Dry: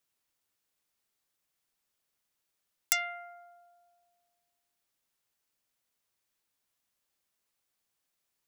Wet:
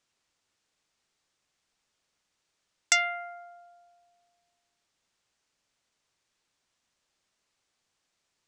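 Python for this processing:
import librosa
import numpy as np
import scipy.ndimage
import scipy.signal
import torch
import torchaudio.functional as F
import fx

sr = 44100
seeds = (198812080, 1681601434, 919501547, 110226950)

y = scipy.signal.sosfilt(scipy.signal.butter(4, 7700.0, 'lowpass', fs=sr, output='sos'), x)
y = y * librosa.db_to_amplitude(7.0)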